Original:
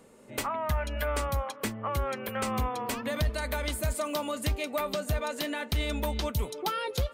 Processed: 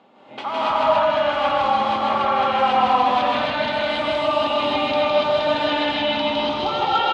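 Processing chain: peak limiter -25 dBFS, peak gain reduction 4.5 dB; cabinet simulation 270–3800 Hz, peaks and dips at 460 Hz -10 dB, 790 Hz +9 dB, 1.9 kHz -5 dB, 3.3 kHz +5 dB; on a send: loudspeakers at several distances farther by 55 m -1 dB, 99 m -2 dB; on the sum: gated-style reverb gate 300 ms rising, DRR -6.5 dB; trim +4 dB

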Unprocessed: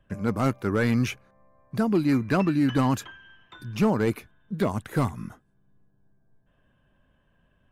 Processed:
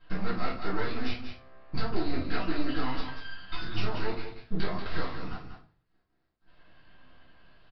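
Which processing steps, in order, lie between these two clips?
tone controls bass -14 dB, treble +15 dB; compression 6:1, threshold -40 dBFS, peak gain reduction 18 dB; delay 187 ms -8.5 dB; half-wave rectifier; reverberation RT60 0.40 s, pre-delay 4 ms, DRR -9.5 dB; resampled via 11.025 kHz

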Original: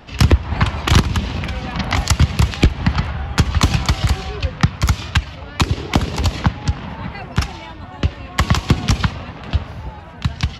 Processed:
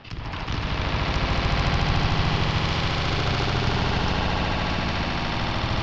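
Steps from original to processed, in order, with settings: steep low-pass 5.3 kHz 36 dB/octave; tone controls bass -4 dB, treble +2 dB; reverse; compression 6:1, threshold -21 dBFS, peak gain reduction 11.5 dB; reverse; peak limiter -20 dBFS, peak gain reduction 9.5 dB; echo with a slow build-up 133 ms, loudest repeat 8, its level -3 dB; granular stretch 0.55×, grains 21 ms; attacks held to a fixed rise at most 210 dB/s

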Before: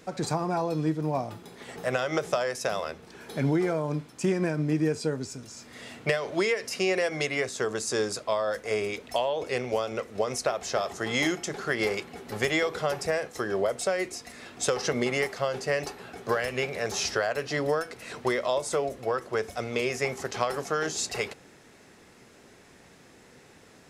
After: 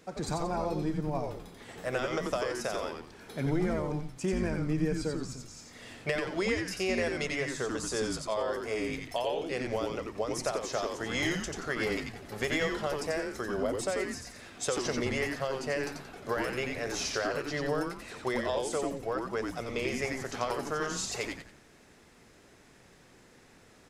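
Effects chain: frequency-shifting echo 89 ms, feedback 33%, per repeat -140 Hz, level -3.5 dB; trim -5.5 dB

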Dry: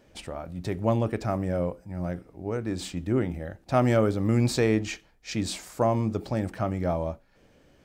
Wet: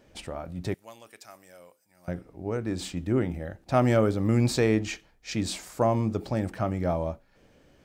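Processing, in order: 0.74–2.08 s: differentiator

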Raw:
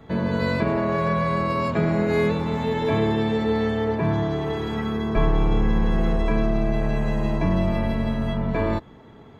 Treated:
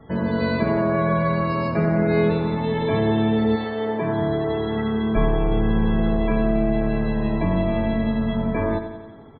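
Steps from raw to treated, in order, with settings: 3.55–4.20 s: high-pass 520 Hz -> 140 Hz 12 dB/octave; loudest bins only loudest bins 64; on a send: feedback delay 91 ms, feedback 60%, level -9.5 dB

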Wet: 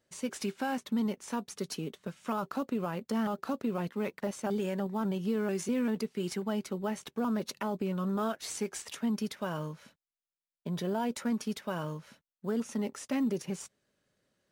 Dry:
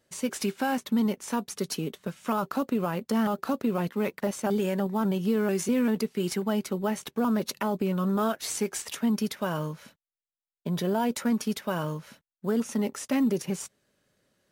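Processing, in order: peaking EQ 13 kHz -7 dB 0.53 oct; trim -5.5 dB

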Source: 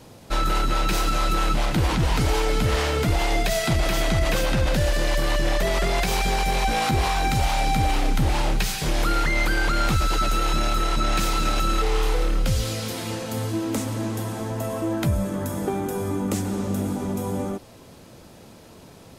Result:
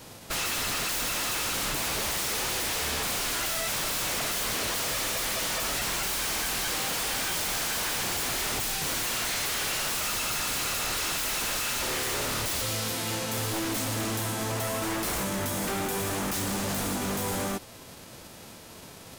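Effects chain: formants flattened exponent 0.6; wavefolder -25 dBFS

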